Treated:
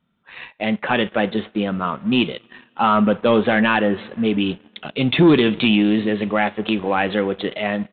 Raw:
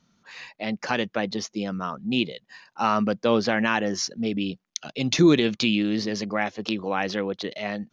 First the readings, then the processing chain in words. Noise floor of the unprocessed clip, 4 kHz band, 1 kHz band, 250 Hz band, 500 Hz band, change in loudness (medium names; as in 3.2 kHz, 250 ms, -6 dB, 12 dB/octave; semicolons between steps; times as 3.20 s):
-71 dBFS, +4.0 dB, +6.5 dB, +6.5 dB, +6.0 dB, +6.0 dB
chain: two-slope reverb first 0.29 s, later 3 s, from -18 dB, DRR 12.5 dB; waveshaping leveller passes 2; resampled via 8 kHz